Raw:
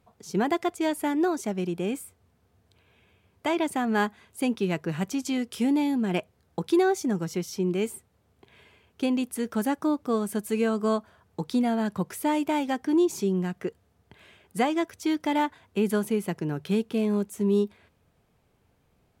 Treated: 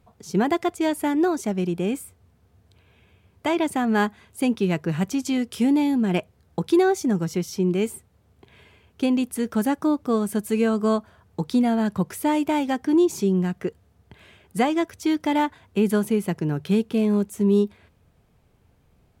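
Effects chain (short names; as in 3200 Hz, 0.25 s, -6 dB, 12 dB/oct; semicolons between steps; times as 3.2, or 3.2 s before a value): low shelf 150 Hz +7.5 dB; gain +2.5 dB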